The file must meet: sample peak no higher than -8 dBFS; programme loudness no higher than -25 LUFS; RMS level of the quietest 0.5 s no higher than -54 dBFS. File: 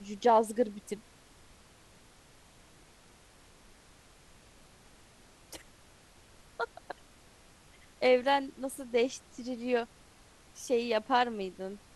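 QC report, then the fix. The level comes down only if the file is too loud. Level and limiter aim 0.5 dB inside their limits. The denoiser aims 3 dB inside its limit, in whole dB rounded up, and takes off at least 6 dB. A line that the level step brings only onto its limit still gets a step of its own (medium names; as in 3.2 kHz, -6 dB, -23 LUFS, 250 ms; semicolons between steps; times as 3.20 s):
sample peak -14.0 dBFS: pass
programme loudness -31.0 LUFS: pass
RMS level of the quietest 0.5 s -59 dBFS: pass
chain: none needed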